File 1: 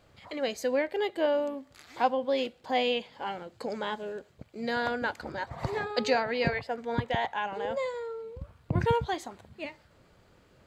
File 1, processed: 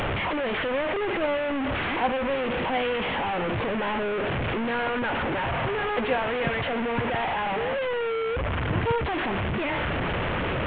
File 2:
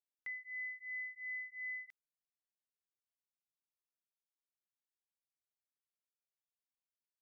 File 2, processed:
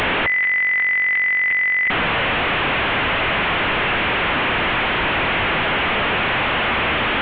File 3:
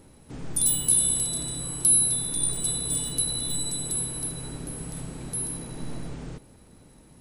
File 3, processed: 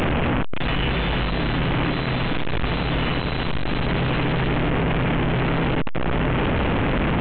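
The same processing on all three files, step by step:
one-bit delta coder 16 kbps, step -20.5 dBFS; peak normalisation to -12 dBFS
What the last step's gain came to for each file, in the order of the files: 0.0 dB, +8.5 dB, +6.0 dB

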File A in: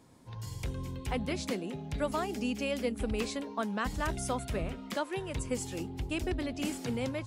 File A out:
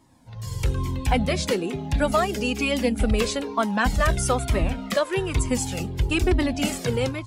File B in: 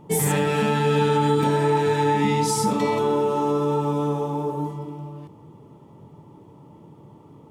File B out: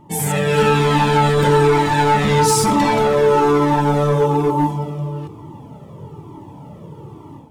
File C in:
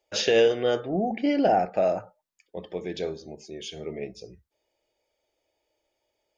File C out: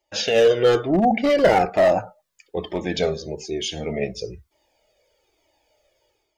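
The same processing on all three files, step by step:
level rider gain up to 10 dB; hard clipper -11 dBFS; Shepard-style flanger falling 1.1 Hz; trim +5.5 dB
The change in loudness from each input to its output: +11.0 LU, +6.0 LU, +5.0 LU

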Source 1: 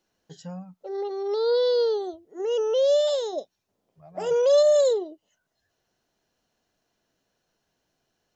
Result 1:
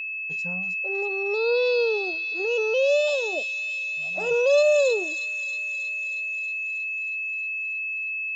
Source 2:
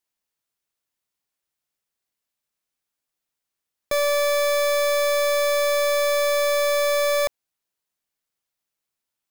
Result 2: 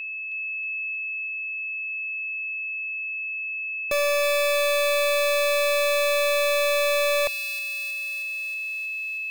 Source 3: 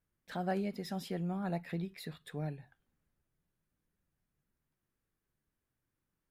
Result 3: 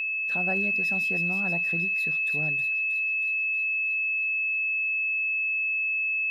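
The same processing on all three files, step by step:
whistle 2.6 kHz -28 dBFS; feedback echo behind a high-pass 317 ms, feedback 69%, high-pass 2.8 kHz, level -6 dB; normalise loudness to -24 LUFS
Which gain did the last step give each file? -1.0 dB, -2.0 dB, +2.0 dB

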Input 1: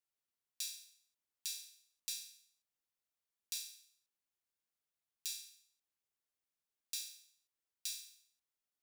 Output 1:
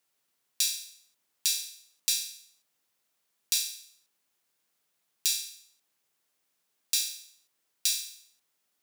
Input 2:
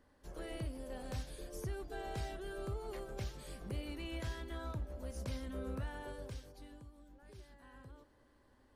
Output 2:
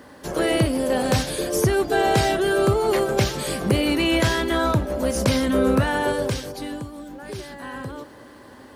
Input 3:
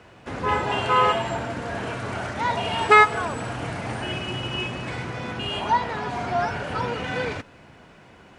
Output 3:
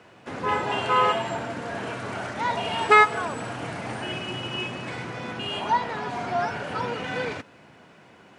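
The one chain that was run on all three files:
high-pass 130 Hz 12 dB/octave; peak normalisation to -6 dBFS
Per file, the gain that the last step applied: +15.0 dB, +25.0 dB, -1.5 dB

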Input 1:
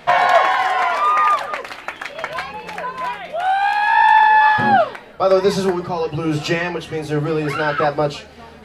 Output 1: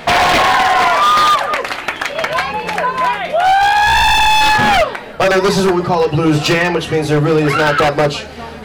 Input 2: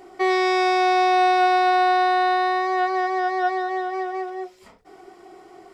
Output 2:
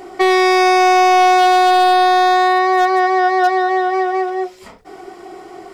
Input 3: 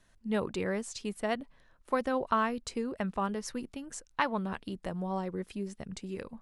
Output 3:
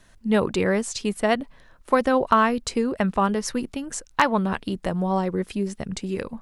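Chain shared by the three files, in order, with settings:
in parallel at +0.5 dB: compression 8:1, threshold -23 dBFS; on the sum: wavefolder -10.5 dBFS; peak normalisation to -6 dBFS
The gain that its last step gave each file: +4.5 dB, +4.5 dB, +4.5 dB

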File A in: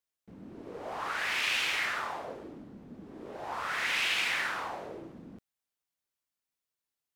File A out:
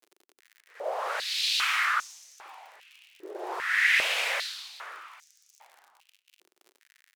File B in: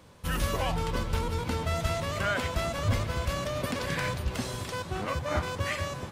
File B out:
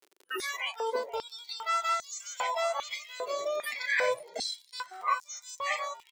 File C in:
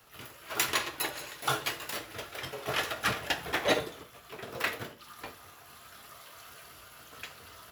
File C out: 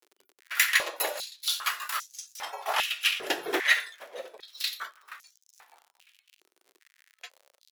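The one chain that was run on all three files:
spectral noise reduction 27 dB; gate -43 dBFS, range -27 dB; peaking EQ 15 kHz +5 dB 1.5 oct; crackle 59 per s -42 dBFS; on a send: frequency-shifting echo 476 ms, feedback 40%, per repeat -93 Hz, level -20 dB; on the sum: step-sequenced high-pass 2.5 Hz 370–6100 Hz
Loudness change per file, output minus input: +4.5 LU, -1.5 LU, +4.5 LU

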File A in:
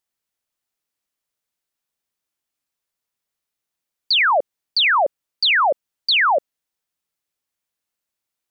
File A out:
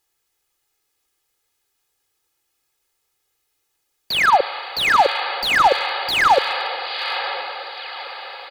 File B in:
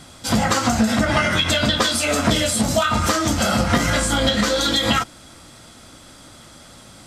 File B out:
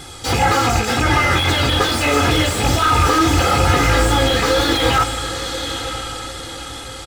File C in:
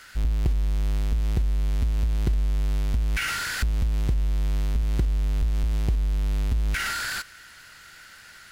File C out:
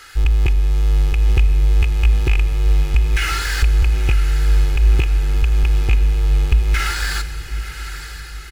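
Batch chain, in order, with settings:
rattle on loud lows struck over -18 dBFS, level -14 dBFS; wow and flutter 40 cents; in parallel at -1 dB: compressor with a negative ratio -21 dBFS, ratio -0.5; on the sum: comb 2.4 ms, depth 80%; on a send: echo that smears into a reverb 971 ms, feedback 44%, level -11.5 dB; on the sum: Schroeder reverb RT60 3.7 s, combs from 27 ms, DRR 13.5 dB; slew-rate limiter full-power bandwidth 410 Hz; trim -1 dB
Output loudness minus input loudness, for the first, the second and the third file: -1.0 LU, +2.5 LU, +8.5 LU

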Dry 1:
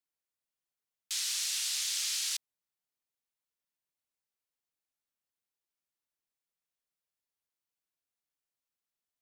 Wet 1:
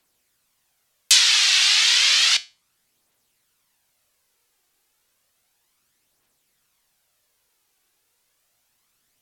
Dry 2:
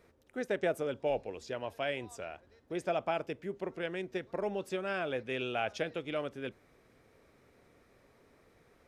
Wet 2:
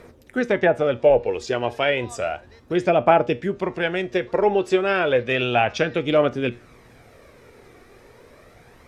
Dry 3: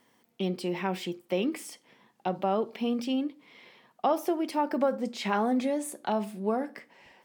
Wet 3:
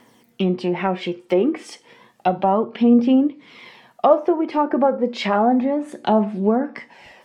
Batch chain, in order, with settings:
low-pass that closes with the level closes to 1.3 kHz, closed at -25.5 dBFS; phaser 0.32 Hz, delay 2.7 ms, feedback 38%; feedback comb 120 Hz, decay 0.28 s, harmonics all, mix 50%; peak normalisation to -2 dBFS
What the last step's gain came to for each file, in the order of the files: +27.0 dB, +19.0 dB, +14.5 dB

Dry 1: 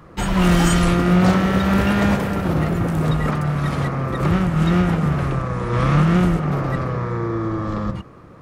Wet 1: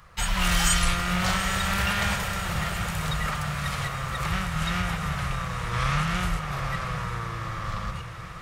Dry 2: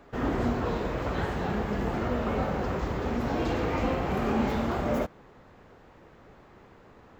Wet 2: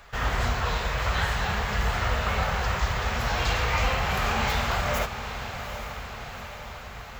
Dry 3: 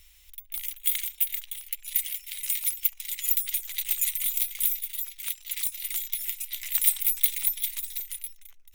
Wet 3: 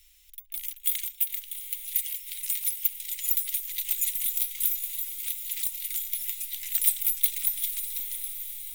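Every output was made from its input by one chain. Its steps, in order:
amplifier tone stack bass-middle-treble 10-0-10; on a send: echo that smears into a reverb 823 ms, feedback 64%, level -10 dB; on the sum: normalise loudness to -27 LUFS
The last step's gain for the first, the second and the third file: +3.5 dB, +14.5 dB, -1.0 dB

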